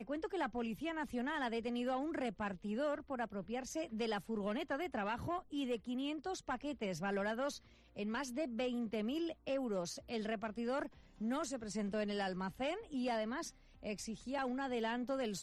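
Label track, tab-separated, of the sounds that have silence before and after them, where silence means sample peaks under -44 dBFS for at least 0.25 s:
7.960000	10.870000	sound
11.210000	13.490000	sound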